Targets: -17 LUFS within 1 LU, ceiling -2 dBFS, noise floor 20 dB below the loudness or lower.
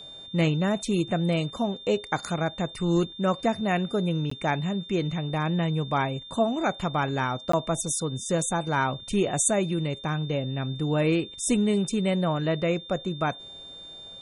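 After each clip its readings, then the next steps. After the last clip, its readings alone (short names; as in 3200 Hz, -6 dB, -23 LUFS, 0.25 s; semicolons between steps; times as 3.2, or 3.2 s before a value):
dropouts 2; longest dropout 14 ms; steady tone 3600 Hz; tone level -41 dBFS; loudness -26.5 LUFS; peak -10.5 dBFS; loudness target -17.0 LUFS
-> interpolate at 4.3/7.52, 14 ms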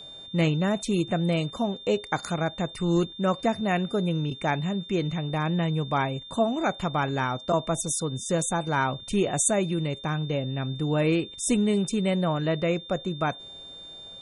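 dropouts 0; steady tone 3600 Hz; tone level -41 dBFS
-> notch 3600 Hz, Q 30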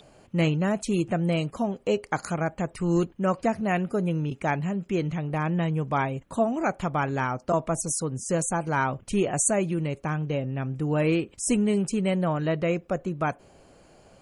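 steady tone none; loudness -27.0 LUFS; peak -10.5 dBFS; loudness target -17.0 LUFS
-> gain +10 dB; limiter -2 dBFS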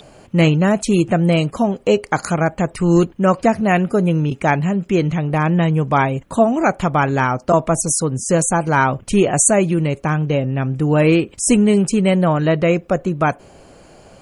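loudness -17.0 LUFS; peak -2.0 dBFS; noise floor -46 dBFS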